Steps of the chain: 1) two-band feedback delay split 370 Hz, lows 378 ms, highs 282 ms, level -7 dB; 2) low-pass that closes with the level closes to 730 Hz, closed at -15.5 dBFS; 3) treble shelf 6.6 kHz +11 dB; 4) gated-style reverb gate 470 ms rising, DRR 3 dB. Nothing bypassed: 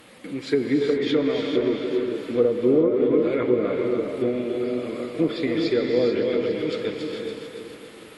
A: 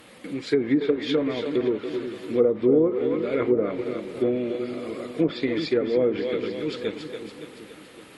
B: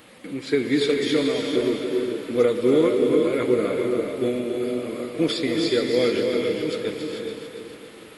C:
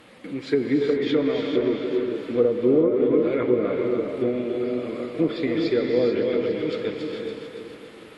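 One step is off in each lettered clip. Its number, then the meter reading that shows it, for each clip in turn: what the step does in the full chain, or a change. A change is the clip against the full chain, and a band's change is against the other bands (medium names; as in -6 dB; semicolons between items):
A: 4, momentary loudness spread change +2 LU; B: 2, 4 kHz band +5.0 dB; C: 3, 4 kHz band -2.5 dB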